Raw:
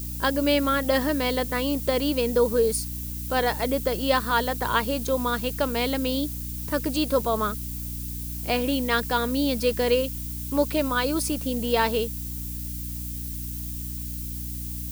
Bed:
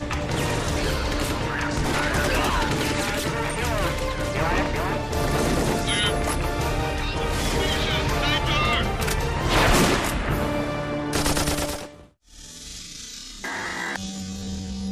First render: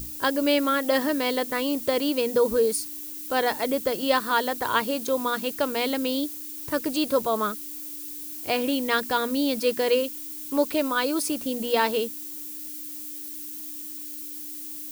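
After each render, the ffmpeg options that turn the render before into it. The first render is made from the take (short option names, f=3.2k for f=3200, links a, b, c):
-af "bandreject=f=60:t=h:w=6,bandreject=f=120:t=h:w=6,bandreject=f=180:t=h:w=6,bandreject=f=240:t=h:w=6"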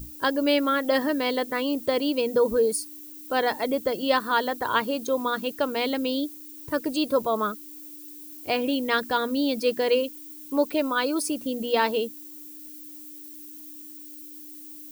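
-af "afftdn=nr=9:nf=-37"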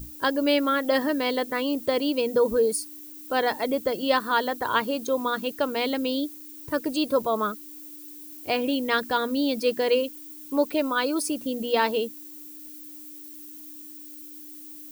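-af "acrusher=bits=9:mix=0:aa=0.000001"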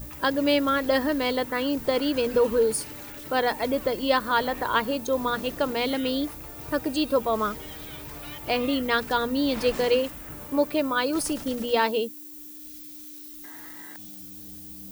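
-filter_complex "[1:a]volume=-19dB[a];[0:a][a]amix=inputs=2:normalize=0"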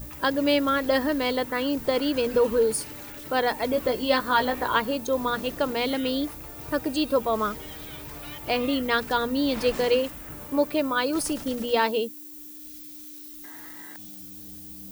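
-filter_complex "[0:a]asettb=1/sr,asplit=3[a][b][c];[a]atrim=end=3.704[d];[b]atrim=start=3.7:end=4.77,asetpts=PTS-STARTPTS,afade=t=in:d=0.004:c=qsin,afade=t=out:st=1.066:d=0.004:c=qsin,asplit=2[e][f];[f]adelay=16,volume=-5.5dB[g];[e][g]amix=inputs=2:normalize=0,atrim=end_sample=47187[h];[c]atrim=start=4.766[i];[d][h]acrossfade=d=0.004:c1=hsin:c2=qsin[j];[j][i]acrossfade=d=0.004:c1=qsin:c2=hsin"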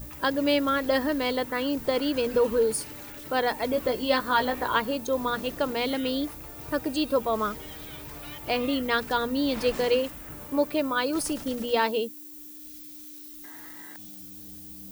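-af "volume=-1.5dB"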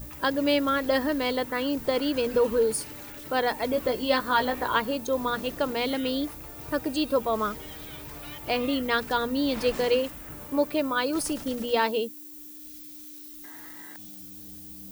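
-af anull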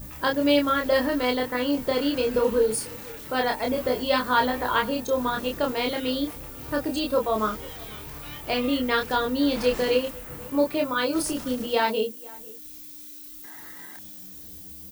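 -filter_complex "[0:a]asplit=2[a][b];[b]adelay=28,volume=-3dB[c];[a][c]amix=inputs=2:normalize=0,asplit=2[d][e];[e]adelay=495.6,volume=-22dB,highshelf=f=4k:g=-11.2[f];[d][f]amix=inputs=2:normalize=0"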